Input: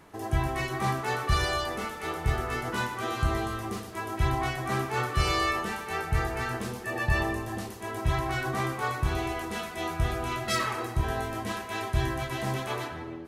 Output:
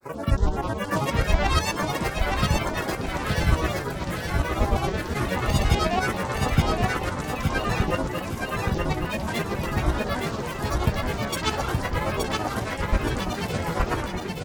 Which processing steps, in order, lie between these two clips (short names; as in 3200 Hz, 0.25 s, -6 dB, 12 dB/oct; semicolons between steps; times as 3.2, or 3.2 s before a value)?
LFO notch sine 0.56 Hz 780–4100 Hz; grains, pitch spread up and down by 12 st; tremolo saw up 8.9 Hz, depth 60%; speed mistake 48 kHz file played as 44.1 kHz; on a send: feedback echo 0.872 s, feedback 37%, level -3.5 dB; on the sum: gain +8 dB